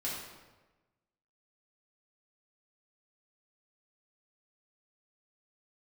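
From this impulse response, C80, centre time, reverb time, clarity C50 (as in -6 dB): 3.5 dB, 67 ms, 1.2 s, 1.0 dB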